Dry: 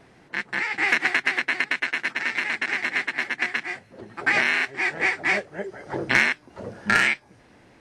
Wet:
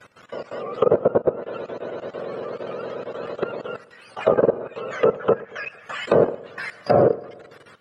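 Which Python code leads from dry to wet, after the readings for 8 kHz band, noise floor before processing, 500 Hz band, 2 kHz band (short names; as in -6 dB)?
under -10 dB, -55 dBFS, +16.0 dB, -15.0 dB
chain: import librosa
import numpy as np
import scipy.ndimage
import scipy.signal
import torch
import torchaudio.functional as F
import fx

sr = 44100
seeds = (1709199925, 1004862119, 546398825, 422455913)

p1 = fx.octave_mirror(x, sr, pivot_hz=1000.0)
p2 = fx.peak_eq(p1, sr, hz=1500.0, db=13.5, octaves=1.7)
p3 = fx.level_steps(p2, sr, step_db=17)
p4 = fx.env_lowpass_down(p3, sr, base_hz=880.0, full_db=-19.5)
p5 = p4 + fx.echo_feedback(p4, sr, ms=114, feedback_pct=58, wet_db=-21.0, dry=0)
y = p5 * 10.0 ** (3.5 / 20.0)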